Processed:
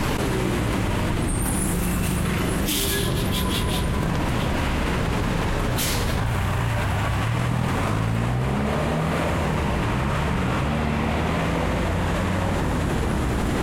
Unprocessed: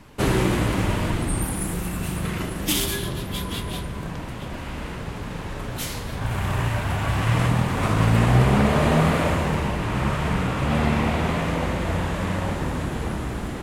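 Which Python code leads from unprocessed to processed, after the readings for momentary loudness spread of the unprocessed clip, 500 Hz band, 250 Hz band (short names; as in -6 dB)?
14 LU, +0.5 dB, +0.5 dB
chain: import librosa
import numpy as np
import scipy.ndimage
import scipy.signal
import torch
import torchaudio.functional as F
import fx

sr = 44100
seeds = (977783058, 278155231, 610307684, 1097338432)

y = fx.env_flatten(x, sr, amount_pct=100)
y = F.gain(torch.from_numpy(y), -9.0).numpy()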